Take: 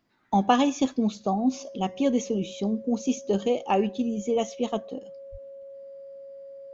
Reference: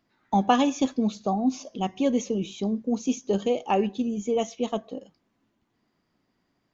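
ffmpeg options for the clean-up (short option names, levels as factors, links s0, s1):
-filter_complex "[0:a]bandreject=f=550:w=30,asplit=3[s0][s1][s2];[s0]afade=t=out:st=5.31:d=0.02[s3];[s1]highpass=f=140:w=0.5412,highpass=f=140:w=1.3066,afade=t=in:st=5.31:d=0.02,afade=t=out:st=5.43:d=0.02[s4];[s2]afade=t=in:st=5.43:d=0.02[s5];[s3][s4][s5]amix=inputs=3:normalize=0"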